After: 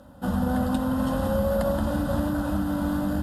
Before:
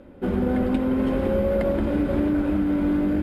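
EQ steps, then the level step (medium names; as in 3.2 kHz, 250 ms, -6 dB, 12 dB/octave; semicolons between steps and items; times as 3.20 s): high-pass 58 Hz; treble shelf 2.9 kHz +11.5 dB; static phaser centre 940 Hz, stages 4; +3.0 dB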